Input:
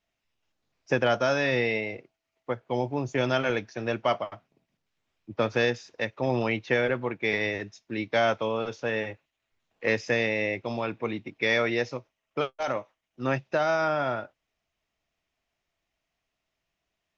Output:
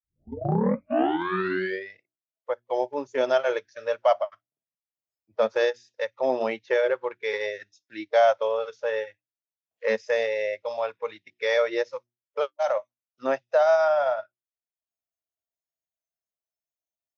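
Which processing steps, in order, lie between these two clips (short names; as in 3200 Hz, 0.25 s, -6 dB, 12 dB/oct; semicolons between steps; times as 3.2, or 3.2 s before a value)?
tape start at the beginning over 2.01 s; HPF 46 Hz 12 dB/oct; notches 60/120/180/240/300/360 Hz; transient shaper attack -1 dB, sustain -8 dB; fifteen-band EQ 100 Hz +4 dB, 630 Hz +8 dB, 2500 Hz -6 dB; spectral noise reduction 24 dB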